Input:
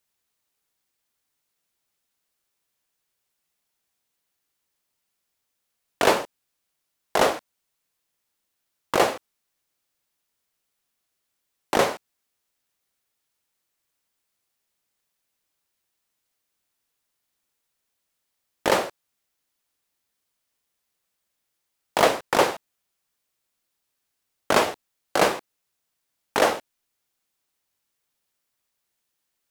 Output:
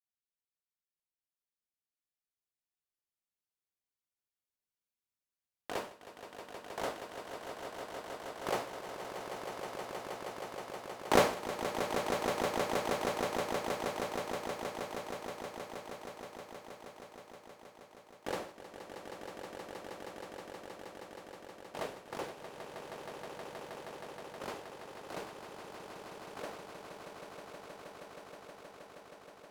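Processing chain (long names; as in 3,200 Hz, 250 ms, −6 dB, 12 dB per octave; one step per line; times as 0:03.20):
source passing by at 0:12.40, 18 m/s, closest 4 metres
low-shelf EQ 270 Hz +6 dB
echo that builds up and dies away 158 ms, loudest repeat 8, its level −9 dB
level +9.5 dB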